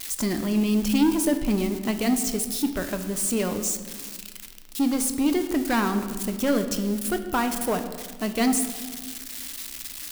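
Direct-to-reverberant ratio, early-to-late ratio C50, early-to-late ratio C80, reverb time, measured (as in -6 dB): 7.0 dB, 9.5 dB, 10.5 dB, 1.6 s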